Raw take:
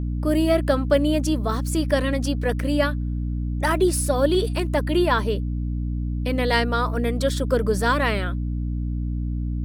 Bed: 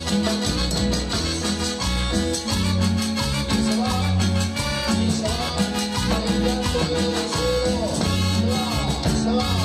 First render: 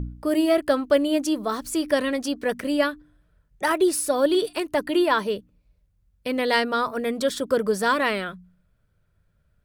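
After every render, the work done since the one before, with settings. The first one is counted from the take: de-hum 60 Hz, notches 5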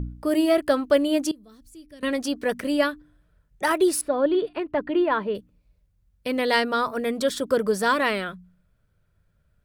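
1.31–2.03 passive tone stack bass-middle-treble 10-0-1; 4.01–5.35 air absorption 450 m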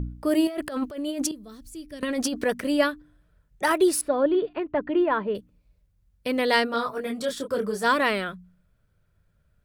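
0.47–2.44 negative-ratio compressor -29 dBFS; 4.23–5.35 air absorption 210 m; 6.66–7.83 detuned doubles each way 21 cents -> 11 cents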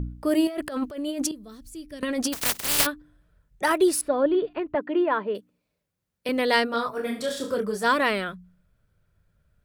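2.32–2.85 spectral contrast lowered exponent 0.12; 4.75–6.29 HPF 240 Hz; 6.95–7.54 flutter echo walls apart 6.7 m, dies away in 0.4 s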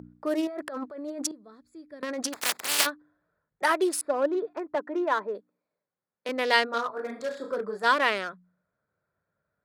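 Wiener smoothing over 15 samples; weighting filter A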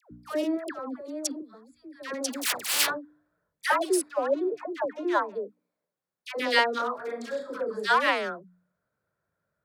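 dispersion lows, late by 0.115 s, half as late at 860 Hz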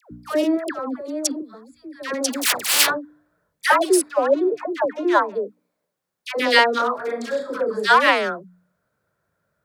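gain +8 dB; limiter -3 dBFS, peak gain reduction 1.5 dB

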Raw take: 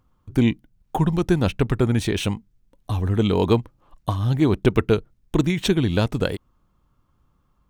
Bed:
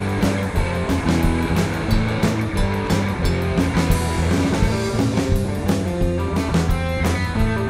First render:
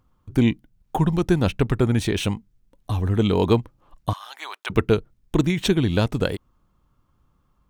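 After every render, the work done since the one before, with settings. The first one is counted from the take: 4.13–4.7 HPF 880 Hz 24 dB/oct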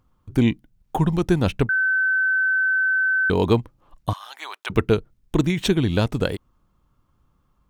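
1.69–3.3 bleep 1530 Hz -17 dBFS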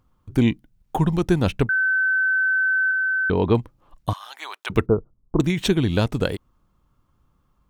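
2.91–3.55 air absorption 270 m; 4.86–5.4 elliptic low-pass 1200 Hz, stop band 70 dB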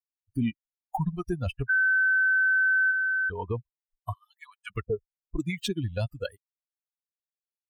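per-bin expansion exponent 3; limiter -19.5 dBFS, peak gain reduction 8.5 dB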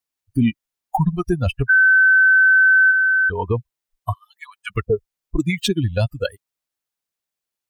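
gain +10 dB

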